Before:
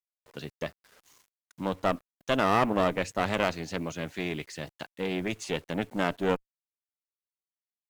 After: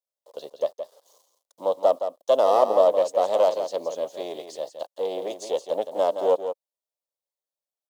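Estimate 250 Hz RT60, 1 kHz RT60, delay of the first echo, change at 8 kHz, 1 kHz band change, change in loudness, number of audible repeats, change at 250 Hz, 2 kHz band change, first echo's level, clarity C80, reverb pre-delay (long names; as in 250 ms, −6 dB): no reverb audible, no reverb audible, 169 ms, +0.5 dB, +4.0 dB, +6.0 dB, 1, −9.0 dB, −13.5 dB, −9.0 dB, no reverb audible, no reverb audible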